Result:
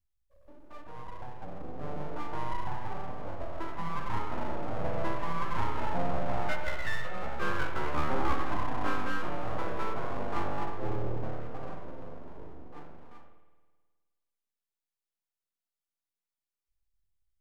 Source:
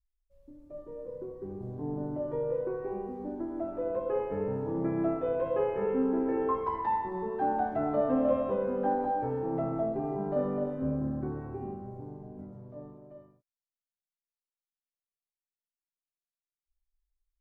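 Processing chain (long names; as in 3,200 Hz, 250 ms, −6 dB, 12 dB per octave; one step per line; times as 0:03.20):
full-wave rectification
spring reverb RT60 1.5 s, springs 52 ms, chirp 45 ms, DRR 7.5 dB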